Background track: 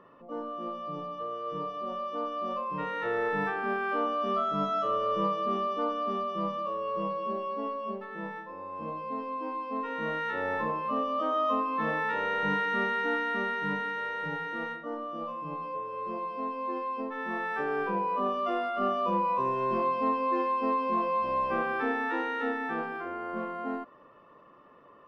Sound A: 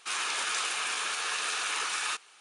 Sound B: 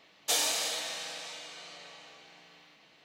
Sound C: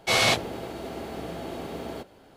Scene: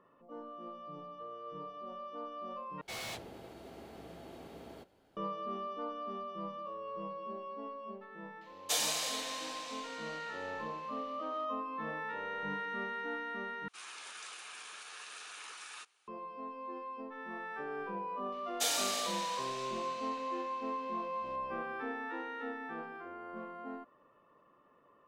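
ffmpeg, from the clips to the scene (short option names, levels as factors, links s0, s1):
-filter_complex "[2:a]asplit=2[s0][s1];[0:a]volume=0.316[s2];[3:a]volume=18.8,asoftclip=hard,volume=0.0531[s3];[s2]asplit=3[s4][s5][s6];[s4]atrim=end=2.814[s7];[s3]atrim=end=2.36,asetpts=PTS-STARTPTS,volume=0.188[s8];[s5]atrim=start=5.166:end=13.684[s9];[1:a]atrim=end=2.4,asetpts=PTS-STARTPTS,volume=0.15[s10];[s6]atrim=start=16.076[s11];[s0]atrim=end=3.04,asetpts=PTS-STARTPTS,volume=0.631,afade=t=in:d=0.004:c=hsin,afade=t=out:st=3.036:d=0.004:c=hsin,adelay=8410[s12];[s1]atrim=end=3.04,asetpts=PTS-STARTPTS,volume=0.596,afade=t=in:d=0.004:c=hsin,afade=t=out:st=3.036:d=0.004:c=hsin,adelay=18320[s13];[s7][s8]acrossfade=d=0.004:c1=hsin:c2=hsin[s14];[s14][s9]acrossfade=d=0.004:c1=hsin:c2=hsin[s15];[s15][s10]acrossfade=d=0.004:c1=hsin:c2=hsin[s16];[s16][s11]acrossfade=d=0.004:c1=hsin:c2=hsin[s17];[s17][s12][s13]amix=inputs=3:normalize=0"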